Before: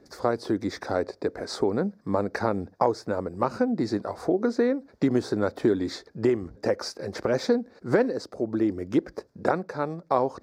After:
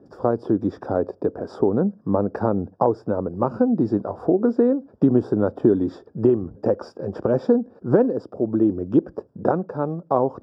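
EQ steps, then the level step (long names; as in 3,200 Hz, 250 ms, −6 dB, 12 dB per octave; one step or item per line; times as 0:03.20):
moving average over 21 samples
high-pass filter 110 Hz
low-shelf EQ 150 Hz +8.5 dB
+4.5 dB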